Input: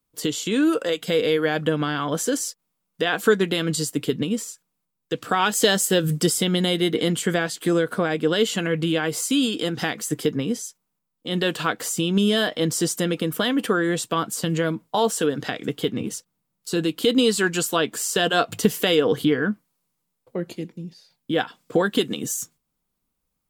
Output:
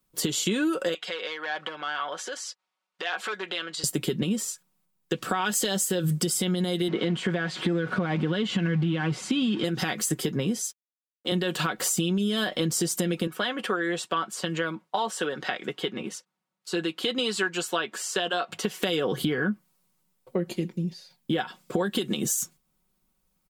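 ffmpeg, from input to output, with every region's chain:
ffmpeg -i in.wav -filter_complex "[0:a]asettb=1/sr,asplit=3[link_01][link_02][link_03];[link_01]atrim=end=0.944[link_04];[link_02]atrim=start=0.94:end=3.84,asetpts=PTS-STARTPTS,afade=type=in:duration=0.004:curve=qsin,afade=type=out:start_time=2.896:duration=0.004:curve=qsin,volume=14.5dB,asoftclip=hard,volume=-14.5dB,acompressor=threshold=-26dB:ratio=6:attack=3.2:release=140:knee=1:detection=peak,highpass=740,lowpass=4100[link_05];[link_03]atrim=start=3.836[link_06];[link_04][link_05]acrossfade=duration=0.004:curve1=hsin:curve2=qsin[link_07];[link_07][link_06]acrossfade=duration=0.004:curve1=qsin:curve2=hsin,asettb=1/sr,asplit=3[link_08][link_09][link_10];[link_08]atrim=end=6.884[link_11];[link_09]atrim=start=6.88:end=9.64,asetpts=PTS-STARTPTS,afade=type=in:duration=0.004:curve=qsin,afade=type=out:start_time=2.756:duration=0.004:curve=qsin,aeval=exprs='val(0)+0.5*0.0282*sgn(val(0))':channel_layout=same,asubboost=boost=7.5:cutoff=200,highpass=150,lowpass=3100[link_12];[link_10]atrim=start=9.636[link_13];[link_11][link_12]acrossfade=duration=0.004:curve1=hsin:curve2=qsin[link_14];[link_14][link_13]acrossfade=duration=0.004:curve1=qsin:curve2=hsin,asettb=1/sr,asplit=3[link_15][link_16][link_17];[link_15]atrim=end=10.644[link_18];[link_16]atrim=start=10.64:end=11.32,asetpts=PTS-STARTPTS,afade=type=in:duration=0.004:curve=qsin,afade=type=out:start_time=0.676:duration=0.004:curve=qsin,highpass=300,aeval=exprs='sgn(val(0))*max(abs(val(0))-0.00119,0)':channel_layout=same[link_19];[link_17]atrim=start=11.316[link_20];[link_18][link_19]acrossfade=duration=0.004:curve1=hsin:curve2=qsin[link_21];[link_21][link_20]acrossfade=duration=0.004:curve1=qsin:curve2=hsin,asettb=1/sr,asplit=3[link_22][link_23][link_24];[link_22]atrim=end=13.274[link_25];[link_23]atrim=start=13.27:end=18.83,asetpts=PTS-STARTPTS,afade=type=in:duration=0.004:curve=qsin,afade=type=out:start_time=5.556:duration=0.004:curve=qsin,highpass=frequency=960:poles=1,aemphasis=mode=reproduction:type=75fm[link_26];[link_24]atrim=start=18.826[link_27];[link_25][link_26]acrossfade=duration=0.004:curve1=hsin:curve2=qsin[link_28];[link_28][link_27]acrossfade=duration=0.004:curve1=qsin:curve2=hsin,aecho=1:1:5.4:0.55,alimiter=limit=-12dB:level=0:latency=1:release=89,acompressor=threshold=-26dB:ratio=6,volume=3dB" out.wav

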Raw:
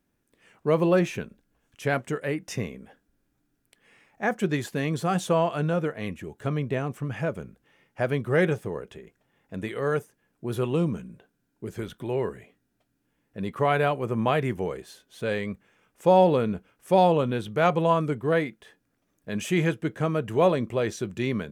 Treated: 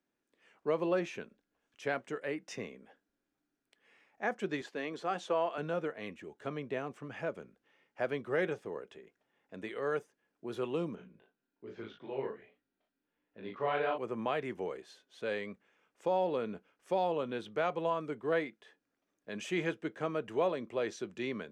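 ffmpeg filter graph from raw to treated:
ffmpeg -i in.wav -filter_complex "[0:a]asettb=1/sr,asplit=3[link_01][link_02][link_03];[link_01]atrim=end=4.614[link_04];[link_02]atrim=start=4.61:end=5.58,asetpts=PTS-STARTPTS,afade=type=in:duration=0.004:curve=qsin,afade=type=out:start_time=0.966:duration=0.004:curve=qsin,highpass=260,highshelf=frequency=8100:gain=-12[link_05];[link_03]atrim=start=5.576[link_06];[link_04][link_05]acrossfade=duration=0.004:curve1=hsin:curve2=qsin[link_07];[link_07][link_06]acrossfade=duration=0.004:curve1=qsin:curve2=hsin,asettb=1/sr,asplit=3[link_08][link_09][link_10];[link_08]atrim=end=10.954[link_11];[link_09]atrim=start=10.95:end=13.98,asetpts=PTS-STARTPTS,afade=type=in:duration=0.004:curve=qsin,afade=type=out:start_time=3.026:duration=0.004:curve=qsin,lowpass=frequency=4800:width=0.5412,lowpass=frequency=4800:width=1.3066,flanger=delay=16:depth=6.5:speed=1.3,asplit=2[link_12][link_13];[link_13]adelay=37,volume=-3.5dB[link_14];[link_12][link_14]amix=inputs=2:normalize=0,atrim=end_sample=133623[link_15];[link_10]atrim=start=13.976[link_16];[link_11][link_15]acrossfade=duration=0.004:curve1=hsin:curve2=qsin[link_17];[link_17][link_16]acrossfade=duration=0.004:curve1=qsin:curve2=hsin,acrossover=split=230 7200:gain=0.158 1 0.141[link_18][link_19][link_20];[link_18][link_19][link_20]amix=inputs=3:normalize=0,alimiter=limit=-14dB:level=0:latency=1:release=342,volume=-7dB" out.wav

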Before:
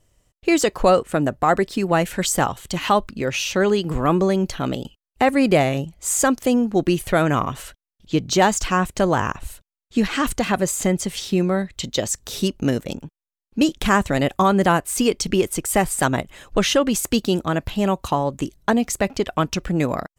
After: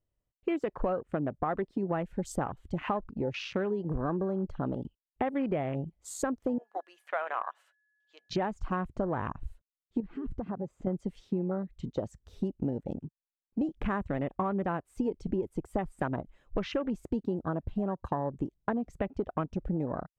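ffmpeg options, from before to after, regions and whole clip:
ffmpeg -i in.wav -filter_complex "[0:a]asettb=1/sr,asplit=3[link_01][link_02][link_03];[link_01]atrim=end=6.584[link_04];[link_02]atrim=start=6.58:end=8.31,asetpts=PTS-STARTPTS,afade=type=in:duration=0.004:curve=qsin,afade=type=out:start_time=1.726:duration=0.004:curve=qsin,highpass=frequency=670:width=0.5412,highpass=frequency=670:width=1.3066,aeval=exprs='val(0)+0.00398*sin(2*PI*1700*n/s)':channel_layout=same[link_05];[link_03]atrim=start=8.306[link_06];[link_04][link_05]acrossfade=duration=0.004:curve1=hsin:curve2=qsin[link_07];[link_07][link_06]acrossfade=duration=0.004:curve1=qsin:curve2=hsin,asettb=1/sr,asplit=3[link_08][link_09][link_10];[link_08]atrim=end=10.004[link_11];[link_09]atrim=start=10:end=10.87,asetpts=PTS-STARTPTS,afade=type=in:duration=0.004:curve=qsin,afade=type=out:start_time=0.866:duration=0.004:curve=qsin,lowpass=frequency=1400:poles=1,acompressor=threshold=-26dB:ratio=4:attack=3.2:release=140:knee=1:detection=peak[link_12];[link_10]atrim=start=10.866[link_13];[link_11][link_12]acrossfade=duration=0.004:curve1=hsin:curve2=qsin[link_14];[link_14][link_13]acrossfade=duration=0.004:curve1=qsin:curve2=hsin,afwtdn=0.0447,lowpass=frequency=1300:poles=1,acompressor=threshold=-23dB:ratio=6,volume=-4.5dB" out.wav

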